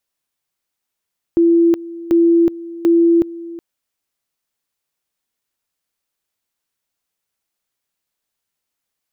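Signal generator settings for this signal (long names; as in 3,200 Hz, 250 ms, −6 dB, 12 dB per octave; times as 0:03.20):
tone at two levels in turn 337 Hz −8.5 dBFS, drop 18.5 dB, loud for 0.37 s, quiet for 0.37 s, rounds 3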